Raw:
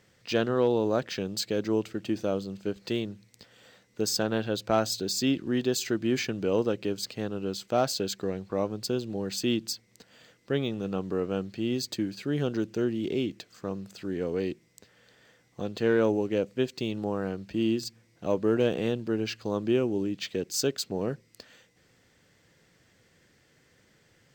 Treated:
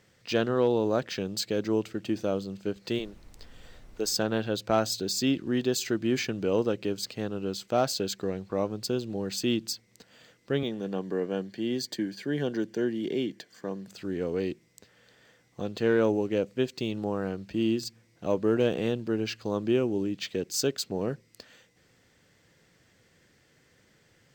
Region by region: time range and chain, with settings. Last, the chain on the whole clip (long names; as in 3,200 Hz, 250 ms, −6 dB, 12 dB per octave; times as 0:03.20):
0:02.98–0:04.10: high-pass filter 310 Hz + background noise brown −49 dBFS
0:10.63–0:13.88: high-pass filter 120 Hz 24 dB per octave + parametric band 1,700 Hz +6 dB 0.29 octaves + notch comb filter 1,300 Hz
whole clip: no processing